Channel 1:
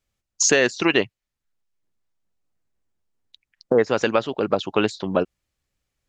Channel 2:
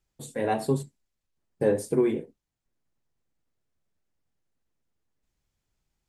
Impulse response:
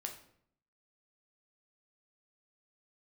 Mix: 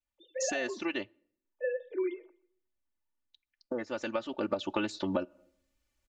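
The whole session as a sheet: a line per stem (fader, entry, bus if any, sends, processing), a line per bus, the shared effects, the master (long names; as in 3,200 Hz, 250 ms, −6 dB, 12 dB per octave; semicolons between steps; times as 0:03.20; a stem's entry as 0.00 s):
0:04.01 −20 dB → 0:04.65 −8 dB, 0.00 s, send −20 dB, no echo send, automatic gain control gain up to 4.5 dB
−3.5 dB, 0.00 s, send −16 dB, echo send −23.5 dB, three sine waves on the formant tracks; low shelf with overshoot 500 Hz −8.5 dB, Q 1.5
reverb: on, RT60 0.65 s, pre-delay 7 ms
echo: repeating echo 125 ms, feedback 25%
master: comb filter 3.4 ms, depth 95%; downward compressor 12 to 1, threshold −27 dBFS, peak gain reduction 11.5 dB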